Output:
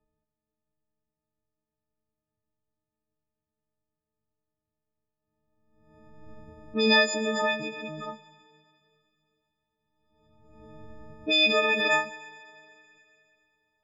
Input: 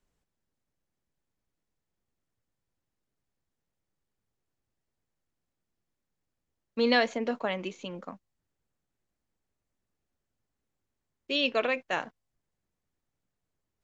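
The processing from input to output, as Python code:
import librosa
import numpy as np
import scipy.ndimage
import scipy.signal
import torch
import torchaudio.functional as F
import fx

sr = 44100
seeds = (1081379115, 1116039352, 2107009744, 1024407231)

y = fx.freq_snap(x, sr, grid_st=6)
y = fx.env_lowpass(y, sr, base_hz=740.0, full_db=-22.0)
y = fx.rev_schroeder(y, sr, rt60_s=2.9, comb_ms=26, drr_db=15.0)
y = fx.pre_swell(y, sr, db_per_s=39.0)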